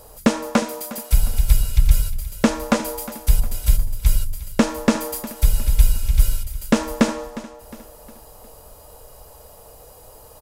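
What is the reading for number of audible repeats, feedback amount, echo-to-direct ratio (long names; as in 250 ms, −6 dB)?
3, 43%, −15.0 dB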